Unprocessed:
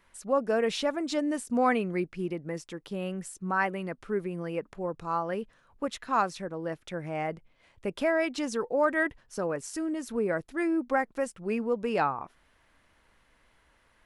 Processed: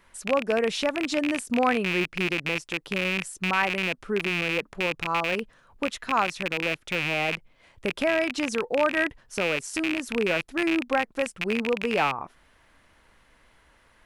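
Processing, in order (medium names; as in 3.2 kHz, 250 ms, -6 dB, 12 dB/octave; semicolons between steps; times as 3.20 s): rattle on loud lows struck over -43 dBFS, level -18 dBFS; in parallel at -1 dB: compression, threshold -34 dBFS, peak gain reduction 14.5 dB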